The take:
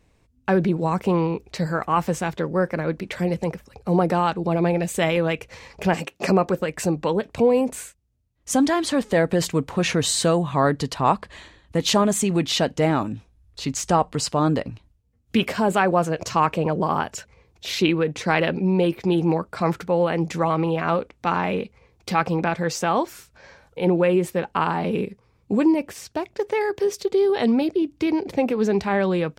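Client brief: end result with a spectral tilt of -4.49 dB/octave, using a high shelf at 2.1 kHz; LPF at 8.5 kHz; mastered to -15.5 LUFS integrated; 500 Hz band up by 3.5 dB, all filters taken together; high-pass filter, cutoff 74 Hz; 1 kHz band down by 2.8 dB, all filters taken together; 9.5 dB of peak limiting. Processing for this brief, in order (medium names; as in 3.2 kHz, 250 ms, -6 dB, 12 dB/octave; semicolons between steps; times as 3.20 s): high-pass 74 Hz; low-pass 8.5 kHz; peaking EQ 500 Hz +5.5 dB; peaking EQ 1 kHz -7.5 dB; treble shelf 2.1 kHz +8 dB; trim +7.5 dB; peak limiter -4.5 dBFS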